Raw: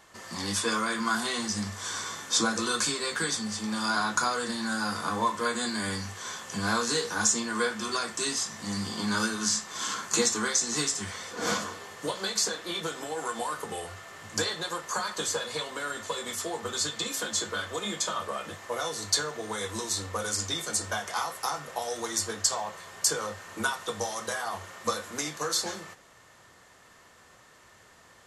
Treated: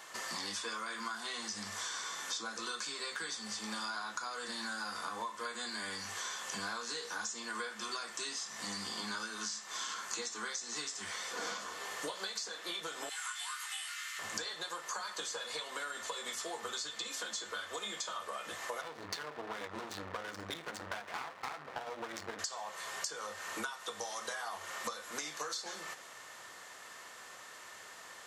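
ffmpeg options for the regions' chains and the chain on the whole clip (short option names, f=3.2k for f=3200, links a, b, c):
-filter_complex "[0:a]asettb=1/sr,asplit=3[a][b][c];[a]atrim=end=13.094[d];[b]atrim=start=13.09:end=14.19,asetpts=PTS-STARTPTS,afade=t=in:d=0.004:c=qsin,afade=t=out:st=1.096:d=0.004:c=qsin,highpass=f=1.5k:w=0.5412,highpass=f=1.5k:w=1.3066,asplit=2[e][f];[f]adelay=19,volume=-2.5dB[g];[e][g]amix=inputs=2:normalize=0,atrim=end_sample=48510[h];[c]atrim=start=14.186[i];[d][h]acrossfade=d=0.004:c1=hsin:c2=qsin[j];[j][i]acrossfade=d=0.004:c1=qsin:c2=hsin,asettb=1/sr,asplit=3[k][l][m];[k]atrim=end=18.814[n];[l]atrim=start=18.81:end=22.39,asetpts=PTS-STARTPTS,afade=t=in:d=0.004:c=qsin,afade=t=out:st=3.576:d=0.004:c=qsin,bass=f=250:g=7,treble=f=4k:g=-7,adynamicsmooth=sensitivity=6:basefreq=870,aeval=exprs='max(val(0),0)':c=same[o];[m]atrim=start=22.386[p];[n][o]acrossfade=d=0.004:c1=hsin:c2=qsin[q];[q][p]acrossfade=d=0.004:c1=qsin:c2=hsin,acrossover=split=7100[r][s];[s]acompressor=threshold=-48dB:ratio=4:attack=1:release=60[t];[r][t]amix=inputs=2:normalize=0,highpass=f=760:p=1,acompressor=threshold=-44dB:ratio=10,volume=6.5dB"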